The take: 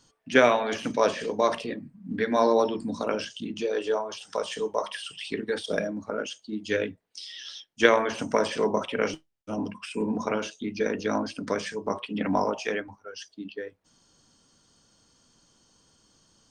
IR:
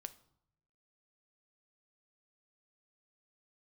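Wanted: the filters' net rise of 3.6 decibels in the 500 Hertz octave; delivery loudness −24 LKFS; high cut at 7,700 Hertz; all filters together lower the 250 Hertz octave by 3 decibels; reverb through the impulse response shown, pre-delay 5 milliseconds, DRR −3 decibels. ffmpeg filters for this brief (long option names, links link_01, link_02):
-filter_complex "[0:a]lowpass=7700,equalizer=frequency=250:width_type=o:gain=-5.5,equalizer=frequency=500:width_type=o:gain=5.5,asplit=2[link_01][link_02];[1:a]atrim=start_sample=2205,adelay=5[link_03];[link_02][link_03]afir=irnorm=-1:irlink=0,volume=7.5dB[link_04];[link_01][link_04]amix=inputs=2:normalize=0,volume=-3.5dB"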